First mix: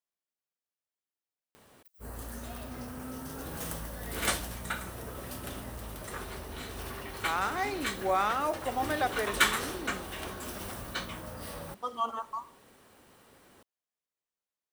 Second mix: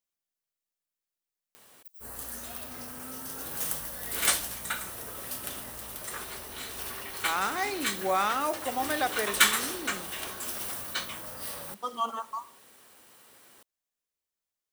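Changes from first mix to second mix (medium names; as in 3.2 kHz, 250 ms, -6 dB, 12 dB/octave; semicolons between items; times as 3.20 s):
speech: remove high-pass 490 Hz 6 dB/octave; master: add tilt EQ +2.5 dB/octave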